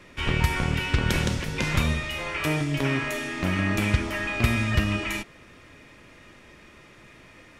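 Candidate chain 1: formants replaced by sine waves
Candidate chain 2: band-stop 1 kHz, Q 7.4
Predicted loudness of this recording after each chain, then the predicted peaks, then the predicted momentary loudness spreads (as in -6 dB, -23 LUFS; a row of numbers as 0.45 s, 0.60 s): -23.5 LUFS, -26.0 LUFS; -10.5 dBFS, -8.0 dBFS; 7 LU, 5 LU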